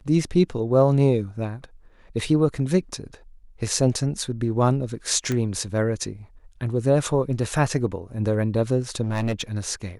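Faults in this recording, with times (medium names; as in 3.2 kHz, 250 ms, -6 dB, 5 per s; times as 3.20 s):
5.32 s: pop -13 dBFS
9.02–9.42 s: clipped -20 dBFS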